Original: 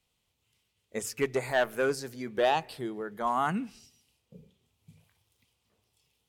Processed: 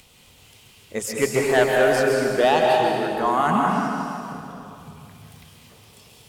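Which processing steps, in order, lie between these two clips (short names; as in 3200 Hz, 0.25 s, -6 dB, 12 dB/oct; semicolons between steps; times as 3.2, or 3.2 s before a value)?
in parallel at -2 dB: upward compressor, threshold -35 dBFS; on the sum: crackle 370/s -58 dBFS; plate-style reverb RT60 2.7 s, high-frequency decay 0.75×, pre-delay 0.12 s, DRR -1.5 dB; gain +1.5 dB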